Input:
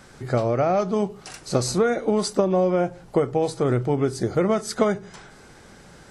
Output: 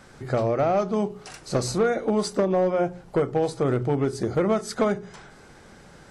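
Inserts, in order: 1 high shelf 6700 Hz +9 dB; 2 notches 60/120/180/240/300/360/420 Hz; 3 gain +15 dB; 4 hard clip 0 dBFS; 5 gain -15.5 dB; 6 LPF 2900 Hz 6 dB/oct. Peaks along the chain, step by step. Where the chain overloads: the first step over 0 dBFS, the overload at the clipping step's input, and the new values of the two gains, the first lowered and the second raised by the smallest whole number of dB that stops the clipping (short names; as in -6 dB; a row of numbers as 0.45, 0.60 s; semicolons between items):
-7.0, -7.5, +7.5, 0.0, -15.5, -15.5 dBFS; step 3, 7.5 dB; step 3 +7 dB, step 5 -7.5 dB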